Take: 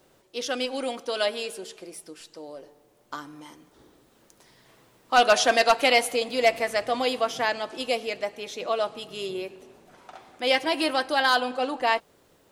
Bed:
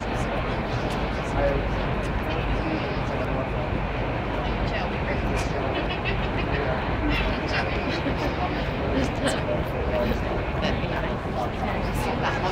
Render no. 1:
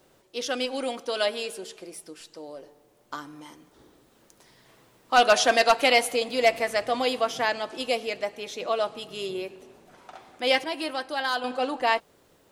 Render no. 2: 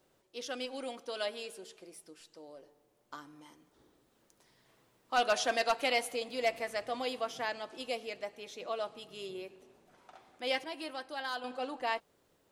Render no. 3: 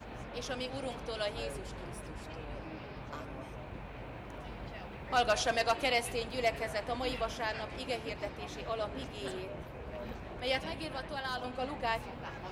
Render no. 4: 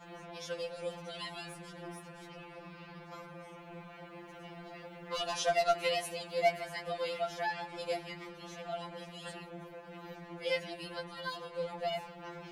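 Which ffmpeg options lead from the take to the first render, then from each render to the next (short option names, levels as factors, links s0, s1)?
-filter_complex "[0:a]asplit=3[s0][s1][s2];[s0]atrim=end=10.642[s3];[s1]atrim=start=10.638:end=11.442,asetpts=PTS-STARTPTS,volume=0.501[s4];[s2]atrim=start=11.438[s5];[s3][s4]acrossfade=d=0.004:c1=hsin:c2=hsin[s6];[s6][s5]acrossfade=d=0.004:c1=hsin:c2=hsin"
-af "volume=0.299"
-filter_complex "[1:a]volume=0.119[s0];[0:a][s0]amix=inputs=2:normalize=0"
-af "afftfilt=real='re*2.83*eq(mod(b,8),0)':imag='im*2.83*eq(mod(b,8),0)':win_size=2048:overlap=0.75"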